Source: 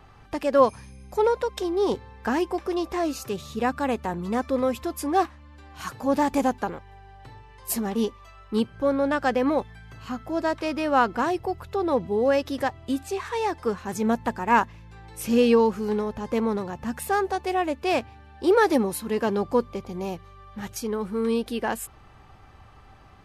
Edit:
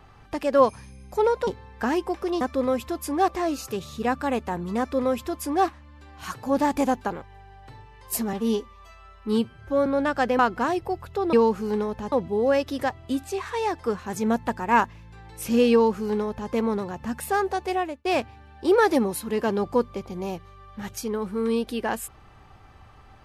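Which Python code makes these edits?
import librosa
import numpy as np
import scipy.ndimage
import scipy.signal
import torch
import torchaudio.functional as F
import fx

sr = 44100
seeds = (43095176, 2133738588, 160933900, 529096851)

y = fx.edit(x, sr, fx.cut(start_s=1.47, length_s=0.44),
    fx.duplicate(start_s=4.36, length_s=0.87, to_s=2.85),
    fx.stretch_span(start_s=7.9, length_s=1.02, factor=1.5),
    fx.cut(start_s=9.45, length_s=1.52),
    fx.duplicate(start_s=15.51, length_s=0.79, to_s=11.91),
    fx.fade_out_span(start_s=17.54, length_s=0.3), tone=tone)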